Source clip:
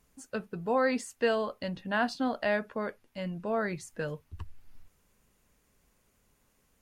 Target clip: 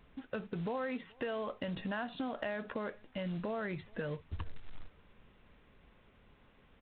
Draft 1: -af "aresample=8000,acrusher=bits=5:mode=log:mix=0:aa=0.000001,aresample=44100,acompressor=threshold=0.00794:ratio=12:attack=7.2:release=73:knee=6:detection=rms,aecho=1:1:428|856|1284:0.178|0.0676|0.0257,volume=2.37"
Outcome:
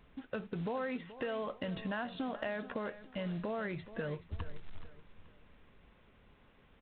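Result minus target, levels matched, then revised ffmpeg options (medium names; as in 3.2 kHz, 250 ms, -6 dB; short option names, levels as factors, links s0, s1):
echo-to-direct +11.5 dB
-af "aresample=8000,acrusher=bits=5:mode=log:mix=0:aa=0.000001,aresample=44100,acompressor=threshold=0.00794:ratio=12:attack=7.2:release=73:knee=6:detection=rms,aecho=1:1:428|856:0.0473|0.018,volume=2.37"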